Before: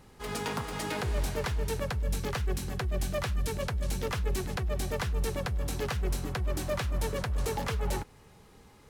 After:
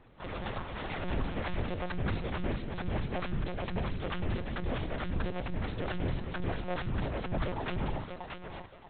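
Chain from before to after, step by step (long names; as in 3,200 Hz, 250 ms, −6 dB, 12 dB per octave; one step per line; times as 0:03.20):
ring modulation 110 Hz
on a send: feedback echo with a high-pass in the loop 631 ms, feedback 32%, high-pass 380 Hz, level −4 dB
on the sum: one-pitch LPC vocoder at 8 kHz 180 Hz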